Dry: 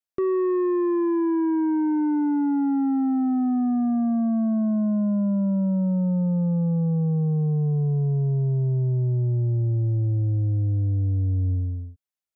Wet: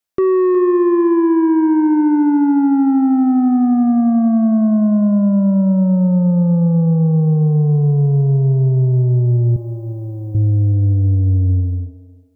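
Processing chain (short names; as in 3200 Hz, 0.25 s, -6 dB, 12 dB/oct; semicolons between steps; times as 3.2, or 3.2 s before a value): 9.56–10.35 tilt +4 dB/oct; thinning echo 0.365 s, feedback 32%, high-pass 410 Hz, level -10 dB; gain +9 dB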